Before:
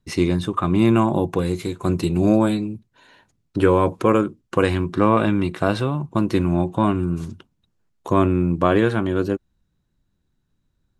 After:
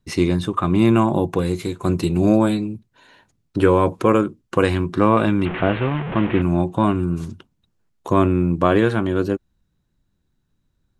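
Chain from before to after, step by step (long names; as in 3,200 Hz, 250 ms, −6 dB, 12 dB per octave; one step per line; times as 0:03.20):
0:05.45–0:06.42: linear delta modulator 16 kbit/s, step −22 dBFS
level +1 dB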